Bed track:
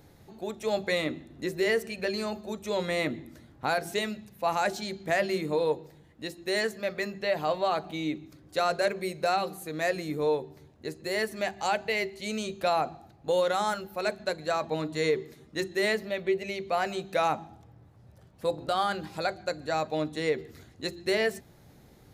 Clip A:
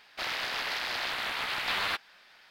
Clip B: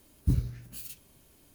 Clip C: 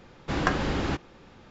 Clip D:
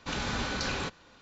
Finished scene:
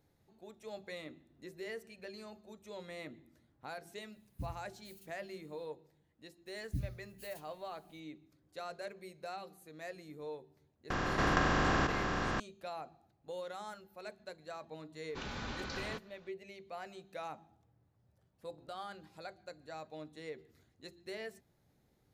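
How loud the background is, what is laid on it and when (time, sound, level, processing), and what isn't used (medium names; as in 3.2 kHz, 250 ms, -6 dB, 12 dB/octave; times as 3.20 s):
bed track -17.5 dB
4.12 s: add B -17.5 dB
6.46 s: add B -12 dB + inverse Chebyshev band-stop 470–1100 Hz
10.90 s: add C -8.5 dB + spectral levelling over time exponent 0.2
15.09 s: add D -9 dB + distance through air 69 m
not used: A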